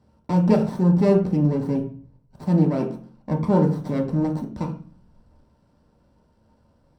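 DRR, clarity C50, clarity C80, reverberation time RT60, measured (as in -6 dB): -0.5 dB, 9.0 dB, 13.5 dB, 0.40 s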